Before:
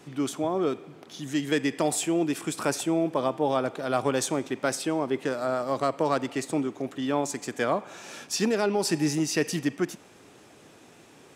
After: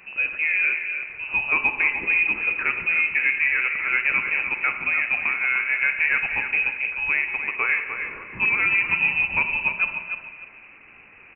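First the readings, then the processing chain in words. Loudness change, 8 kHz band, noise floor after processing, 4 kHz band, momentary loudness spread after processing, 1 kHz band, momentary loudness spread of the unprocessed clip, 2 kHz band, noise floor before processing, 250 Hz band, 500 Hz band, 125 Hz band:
+7.0 dB, below −40 dB, −48 dBFS, −5.0 dB, 6 LU, −2.5 dB, 7 LU, +18.5 dB, −53 dBFS, −17.5 dB, −16.0 dB, below −10 dB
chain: in parallel at −6 dB: hard clipping −20.5 dBFS, distortion −14 dB
on the sum: repeating echo 300 ms, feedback 24%, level −8 dB
four-comb reverb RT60 1.4 s, combs from 32 ms, DRR 8 dB
voice inversion scrambler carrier 2,800 Hz

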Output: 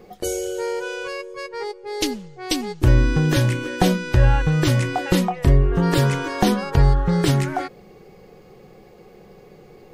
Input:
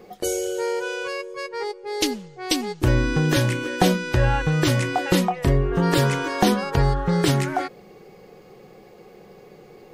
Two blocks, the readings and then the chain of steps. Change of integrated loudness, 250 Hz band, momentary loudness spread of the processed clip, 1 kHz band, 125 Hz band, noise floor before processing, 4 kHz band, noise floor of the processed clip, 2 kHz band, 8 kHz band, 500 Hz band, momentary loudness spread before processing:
+1.5 dB, +1.0 dB, 13 LU, −1.0 dB, +3.5 dB, −48 dBFS, −1.0 dB, −48 dBFS, −1.0 dB, −1.0 dB, −0.5 dB, 10 LU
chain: low-shelf EQ 110 Hz +10 dB
level −1 dB

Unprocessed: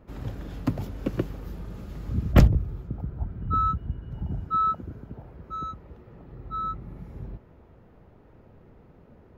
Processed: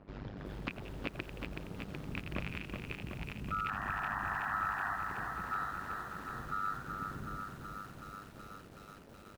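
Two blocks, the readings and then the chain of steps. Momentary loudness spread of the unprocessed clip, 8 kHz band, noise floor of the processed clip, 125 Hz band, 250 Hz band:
20 LU, can't be measured, −54 dBFS, −17.0 dB, −12.5 dB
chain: loose part that buzzes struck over −22 dBFS, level −9 dBFS
sound drawn into the spectrogram noise, 0:03.68–0:04.96, 680–1,900 Hz −27 dBFS
echo with shifted repeats 86 ms, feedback 39%, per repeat +77 Hz, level −13 dB
amplitude modulation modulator 100 Hz, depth 90%
low-shelf EQ 120 Hz −7 dB
downward compressor 5 to 1, threshold −41 dBFS, peak gain reduction 22.5 dB
low-pass filter 5,200 Hz 24 dB per octave
dynamic equaliser 1,400 Hz, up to +5 dB, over −56 dBFS, Q 1.1
feedback echo at a low word length 374 ms, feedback 80%, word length 10 bits, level −5 dB
level +1.5 dB

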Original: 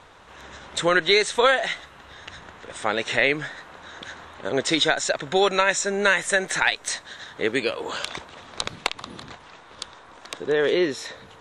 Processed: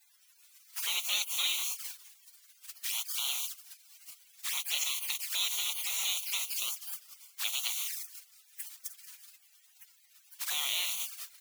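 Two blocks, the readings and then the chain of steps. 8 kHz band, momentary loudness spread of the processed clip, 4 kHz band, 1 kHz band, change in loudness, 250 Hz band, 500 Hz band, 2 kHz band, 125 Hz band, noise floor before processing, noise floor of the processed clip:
−2.0 dB, 20 LU, −6.0 dB, −22.5 dB, −9.5 dB, below −40 dB, −38.0 dB, −17.5 dB, below −40 dB, −48 dBFS, −64 dBFS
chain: background noise white −35 dBFS
on a send: repeating echo 203 ms, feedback 49%, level −16.5 dB
on the sum: gate on every frequency bin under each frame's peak −20 dB weak
flanger swept by the level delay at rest 7.3 ms, full sweep at −31.5 dBFS
high-pass filter 1,400 Hz 12 dB per octave
in parallel at −3 dB: brickwall limiter −29 dBFS, peak gain reduction 10 dB

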